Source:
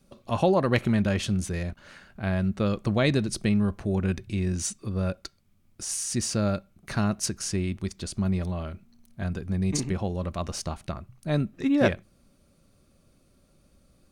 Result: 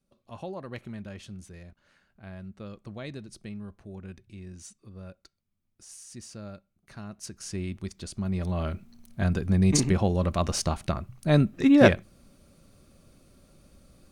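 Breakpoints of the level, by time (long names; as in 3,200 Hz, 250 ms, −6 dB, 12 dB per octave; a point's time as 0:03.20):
0:07.05 −16 dB
0:07.63 −4.5 dB
0:08.27 −4.5 dB
0:08.67 +5 dB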